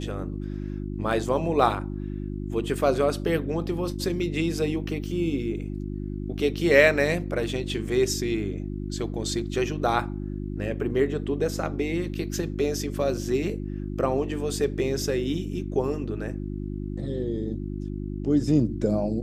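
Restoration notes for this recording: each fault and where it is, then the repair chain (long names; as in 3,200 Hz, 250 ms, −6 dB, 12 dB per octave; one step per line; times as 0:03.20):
mains hum 50 Hz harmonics 7 −32 dBFS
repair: hum removal 50 Hz, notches 7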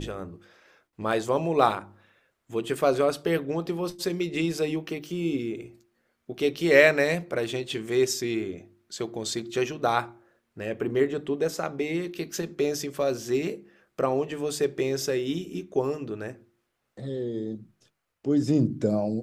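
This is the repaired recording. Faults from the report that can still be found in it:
none of them is left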